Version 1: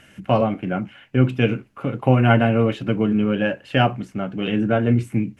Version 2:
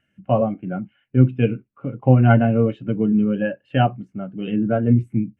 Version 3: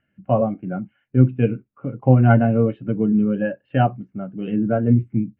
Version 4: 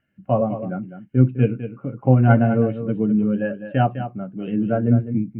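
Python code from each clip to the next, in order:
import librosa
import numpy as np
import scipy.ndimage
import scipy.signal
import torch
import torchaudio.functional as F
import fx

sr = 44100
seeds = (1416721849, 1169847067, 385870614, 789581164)

y1 = fx.spectral_expand(x, sr, expansion=1.5)
y1 = F.gain(torch.from_numpy(y1), 1.0).numpy()
y2 = scipy.signal.sosfilt(scipy.signal.butter(2, 2100.0, 'lowpass', fs=sr, output='sos'), y1)
y3 = y2 + 10.0 ** (-10.5 / 20.0) * np.pad(y2, (int(205 * sr / 1000.0), 0))[:len(y2)]
y3 = F.gain(torch.from_numpy(y3), -1.0).numpy()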